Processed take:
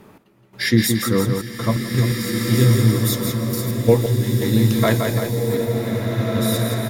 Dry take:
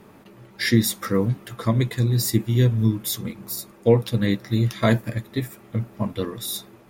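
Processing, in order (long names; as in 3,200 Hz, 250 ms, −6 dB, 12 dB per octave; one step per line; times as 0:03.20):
on a send: repeating echo 171 ms, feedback 60%, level −5.5 dB
on the sum: gate pattern "x..xxxxx.x." 85 BPM −12 dB
slow-attack reverb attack 1,840 ms, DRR 2.5 dB
level +2 dB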